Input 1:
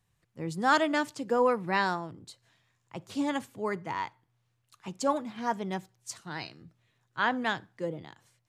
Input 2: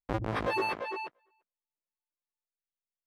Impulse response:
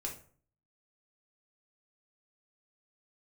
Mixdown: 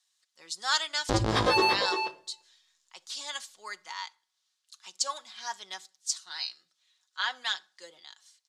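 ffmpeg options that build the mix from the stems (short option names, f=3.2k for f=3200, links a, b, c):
-filter_complex "[0:a]highpass=1.3k,aecho=1:1:5.4:0.45,volume=-2.5dB,asplit=2[a][b];[b]volume=-18.5dB[c];[1:a]adelay=1000,volume=2dB,asplit=2[d][e];[e]volume=-3dB[f];[2:a]atrim=start_sample=2205[g];[c][f]amix=inputs=2:normalize=0[h];[h][g]afir=irnorm=-1:irlink=0[i];[a][d][i]amix=inputs=3:normalize=0,lowpass=4.9k,aexciter=amount=7.5:drive=4.1:freq=3.5k"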